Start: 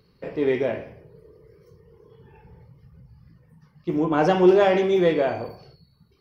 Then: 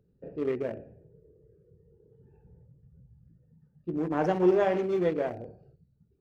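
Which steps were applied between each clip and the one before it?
adaptive Wiener filter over 41 samples
dynamic equaliser 3,700 Hz, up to −7 dB, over −51 dBFS, Q 1.8
level −6.5 dB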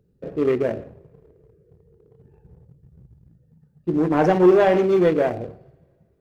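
leveller curve on the samples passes 1
coupled-rooms reverb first 0.51 s, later 2.4 s, from −18 dB, DRR 19.5 dB
level +6.5 dB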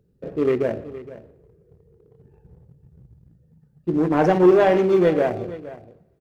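single-tap delay 467 ms −16.5 dB

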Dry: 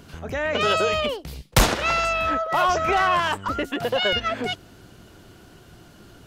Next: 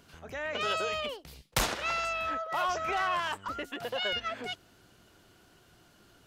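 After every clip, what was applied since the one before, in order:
low-shelf EQ 470 Hz −7.5 dB
level −8.5 dB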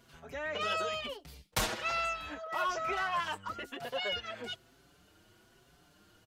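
barber-pole flanger 5.7 ms +1.1 Hz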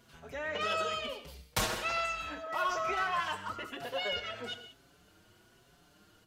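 reverb whose tail is shaped and stops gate 210 ms flat, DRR 8 dB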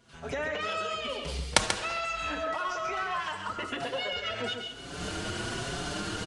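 camcorder AGC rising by 47 dB per second
on a send: single-tap delay 137 ms −7.5 dB
on the sum: downsampling to 22,050 Hz
level −1.5 dB

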